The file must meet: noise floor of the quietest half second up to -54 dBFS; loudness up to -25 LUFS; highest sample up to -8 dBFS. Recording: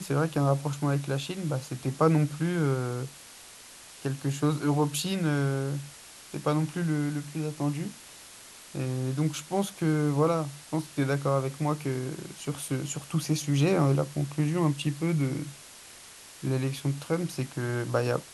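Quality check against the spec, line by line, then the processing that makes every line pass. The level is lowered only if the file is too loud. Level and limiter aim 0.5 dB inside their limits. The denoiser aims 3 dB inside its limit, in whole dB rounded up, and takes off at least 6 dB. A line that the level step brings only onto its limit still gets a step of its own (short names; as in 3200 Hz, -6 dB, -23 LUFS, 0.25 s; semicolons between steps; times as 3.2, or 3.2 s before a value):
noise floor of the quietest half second -49 dBFS: fail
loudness -29.0 LUFS: OK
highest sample -10.0 dBFS: OK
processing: denoiser 8 dB, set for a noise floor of -49 dBFS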